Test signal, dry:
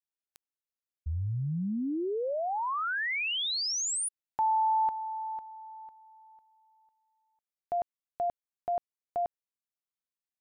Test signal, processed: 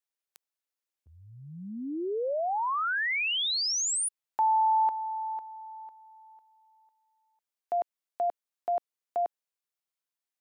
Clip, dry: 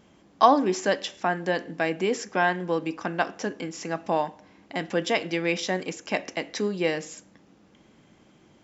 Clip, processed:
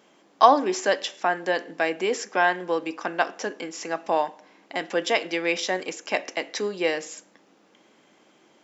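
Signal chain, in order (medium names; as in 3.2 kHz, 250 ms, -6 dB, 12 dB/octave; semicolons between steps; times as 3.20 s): high-pass 360 Hz 12 dB/octave; trim +2.5 dB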